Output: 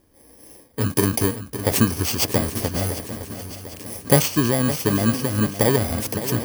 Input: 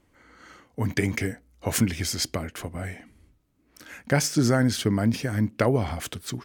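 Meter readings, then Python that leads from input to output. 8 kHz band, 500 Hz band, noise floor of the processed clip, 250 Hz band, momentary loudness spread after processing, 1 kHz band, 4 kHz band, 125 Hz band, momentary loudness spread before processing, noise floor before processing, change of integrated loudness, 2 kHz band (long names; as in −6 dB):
+5.5 dB, +5.5 dB, −52 dBFS, +3.5 dB, 14 LU, +5.0 dB, +4.0 dB, +3.5 dB, 14 LU, −65 dBFS, +5.0 dB, +2.0 dB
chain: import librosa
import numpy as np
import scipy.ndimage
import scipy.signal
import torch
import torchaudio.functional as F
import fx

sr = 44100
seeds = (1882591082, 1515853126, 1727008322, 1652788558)

p1 = fx.bit_reversed(x, sr, seeds[0], block=32)
p2 = fx.peak_eq(p1, sr, hz=490.0, db=6.0, octaves=1.1)
p3 = fx.rider(p2, sr, range_db=5, speed_s=0.5)
p4 = p3 + fx.echo_swing(p3, sr, ms=748, ratio=3, feedback_pct=49, wet_db=-12.0, dry=0)
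y = p4 * 10.0 ** (3.0 / 20.0)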